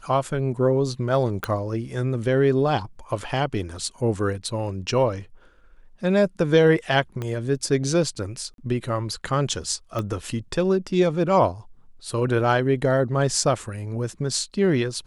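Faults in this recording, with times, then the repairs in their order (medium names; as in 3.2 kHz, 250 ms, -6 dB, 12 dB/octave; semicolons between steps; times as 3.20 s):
1.44 s: pop -11 dBFS
7.22 s: pop -17 dBFS
8.54–8.58 s: dropout 42 ms
9.99 s: pop -15 dBFS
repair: de-click; interpolate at 8.54 s, 42 ms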